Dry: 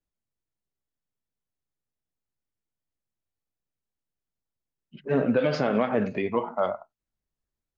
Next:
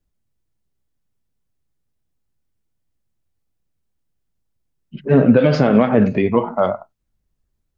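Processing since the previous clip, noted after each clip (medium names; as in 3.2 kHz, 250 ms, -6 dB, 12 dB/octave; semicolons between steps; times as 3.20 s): bass shelf 270 Hz +11 dB; trim +6.5 dB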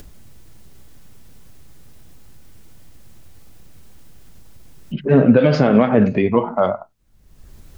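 upward compressor, threshold -16 dBFS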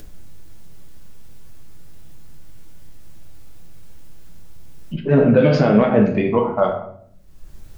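simulated room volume 100 m³, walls mixed, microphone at 0.58 m; trim -2.5 dB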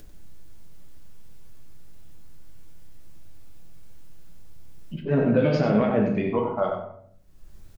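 echo from a far wall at 16 m, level -7 dB; trim -7.5 dB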